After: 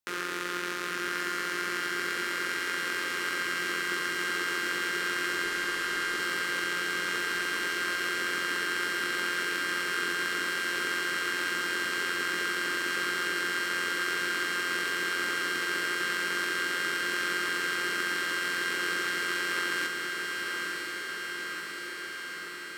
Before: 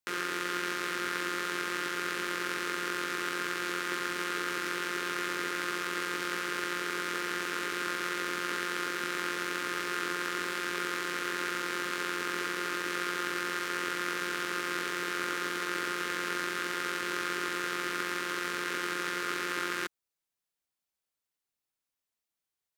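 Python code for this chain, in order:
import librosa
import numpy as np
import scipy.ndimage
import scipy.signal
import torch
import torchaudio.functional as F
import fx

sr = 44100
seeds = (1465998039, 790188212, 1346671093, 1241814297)

p1 = fx.delta_mod(x, sr, bps=64000, step_db=-37.0, at=(5.44, 6.2))
y = p1 + fx.echo_diffused(p1, sr, ms=998, feedback_pct=74, wet_db=-4, dry=0)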